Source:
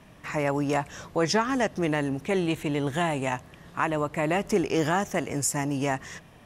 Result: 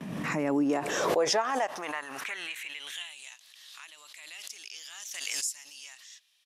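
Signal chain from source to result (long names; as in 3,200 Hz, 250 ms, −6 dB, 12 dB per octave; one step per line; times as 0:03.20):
low-shelf EQ 270 Hz +6.5 dB
noise gate with hold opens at −43 dBFS
high-pass filter sweep 200 Hz → 3,900 Hz, 0:00.24–0:03.25
downsampling to 32,000 Hz
background raised ahead of every attack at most 30 dB per second
level −8 dB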